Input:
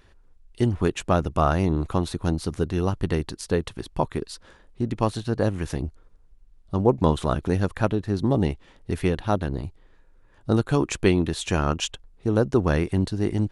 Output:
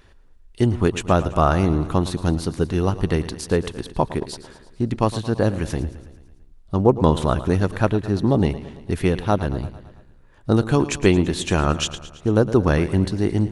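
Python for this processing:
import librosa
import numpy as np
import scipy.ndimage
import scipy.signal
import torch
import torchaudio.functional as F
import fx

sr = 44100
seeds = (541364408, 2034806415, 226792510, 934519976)

y = fx.echo_feedback(x, sr, ms=111, feedback_pct=59, wet_db=-15.0)
y = y * 10.0 ** (3.5 / 20.0)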